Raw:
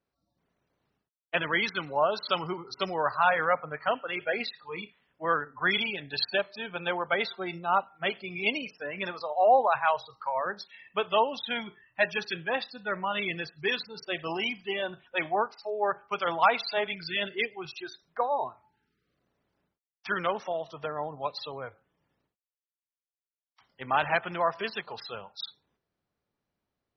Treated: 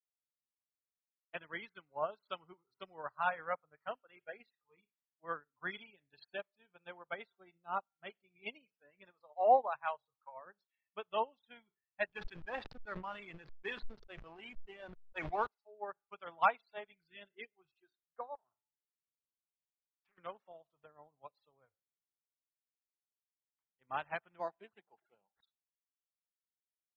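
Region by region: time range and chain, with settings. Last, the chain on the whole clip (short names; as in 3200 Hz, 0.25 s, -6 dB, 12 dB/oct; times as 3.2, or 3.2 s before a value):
12.06–15.47 bell 1300 Hz +4.5 dB 2 oct + backlash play -32.5 dBFS + sustainer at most 34 dB/s
18.35–20.18 compressor 12:1, threshold -38 dBFS + Doppler distortion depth 0.45 ms
24.39–25.41 speaker cabinet 180–4400 Hz, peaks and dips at 190 Hz +5 dB, 330 Hz +7 dB, 800 Hz +8 dB, 1200 Hz -10 dB, 2400 Hz +3 dB + decimation joined by straight lines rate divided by 8×
whole clip: LPF 3400 Hz 12 dB/oct; low shelf 62 Hz +8 dB; upward expander 2.5:1, over -40 dBFS; gain -4 dB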